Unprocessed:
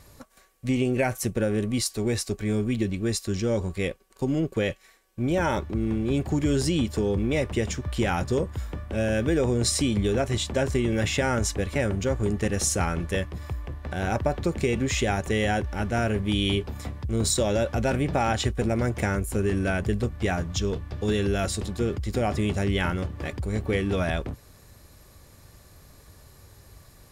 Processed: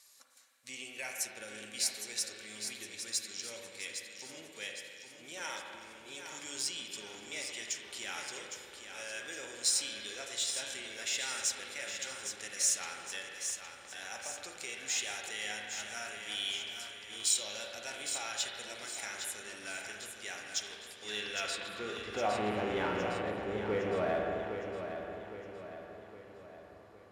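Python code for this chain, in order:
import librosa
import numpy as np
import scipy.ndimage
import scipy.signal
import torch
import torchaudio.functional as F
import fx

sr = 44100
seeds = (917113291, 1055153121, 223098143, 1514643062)

p1 = fx.filter_sweep_bandpass(x, sr, from_hz=6700.0, to_hz=600.0, start_s=20.79, end_s=22.6, q=0.87)
p2 = fx.rev_spring(p1, sr, rt60_s=2.1, pass_ms=(38, 52), chirp_ms=35, drr_db=1.5)
p3 = fx.dmg_buzz(p2, sr, base_hz=120.0, harmonics=25, level_db=-40.0, tilt_db=-2, odd_only=False, at=(22.3, 23.21), fade=0.02)
p4 = np.clip(p3, -10.0 ** (-31.0 / 20.0), 10.0 ** (-31.0 / 20.0))
p5 = p3 + (p4 * 10.0 ** (-6.5 / 20.0))
p6 = fx.low_shelf(p5, sr, hz=420.0, db=-6.5)
p7 = p6 + fx.echo_feedback(p6, sr, ms=811, feedback_pct=48, wet_db=-8, dry=0)
y = p7 * 10.0 ** (-4.0 / 20.0)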